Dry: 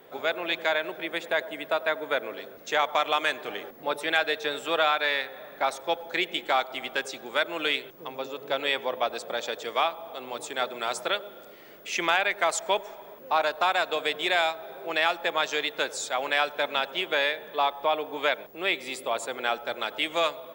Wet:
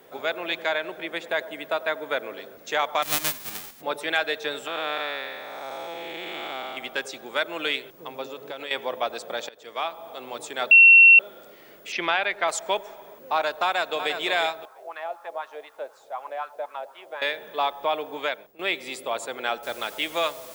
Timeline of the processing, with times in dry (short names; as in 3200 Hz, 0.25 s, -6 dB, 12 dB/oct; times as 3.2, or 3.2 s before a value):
0.62–1.29 high shelf 11000 Hz -7.5 dB
3.02–3.8 spectral whitening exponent 0.1
4.67–6.77 time blur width 0.406 s
8.27–8.71 compressor, threshold -31 dBFS
9.49–10.05 fade in, from -21.5 dB
10.71–11.19 bleep 2720 Hz -8 dBFS
11.92–12.48 steep low-pass 5300 Hz 48 dB/oct
13.64–14.14 echo throw 0.35 s, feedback 30%, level -8 dB
14.65–17.22 wah 4 Hz 590–1200 Hz, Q 3.6
18.13–18.59 fade out, to -13.5 dB
19.63 noise floor step -67 dB -46 dB